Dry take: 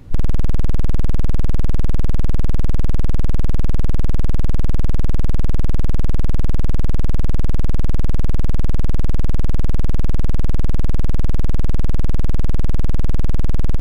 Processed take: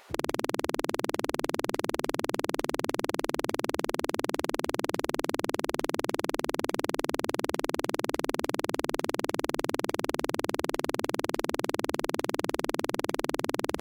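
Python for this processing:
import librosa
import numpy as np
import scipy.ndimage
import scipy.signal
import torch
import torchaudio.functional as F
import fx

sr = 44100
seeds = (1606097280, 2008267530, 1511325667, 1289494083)

y = fx.spec_gate(x, sr, threshold_db=-30, keep='weak')
y = fx.hum_notches(y, sr, base_hz=50, count=5)
y = y * 10.0 ** (5.0 / 20.0)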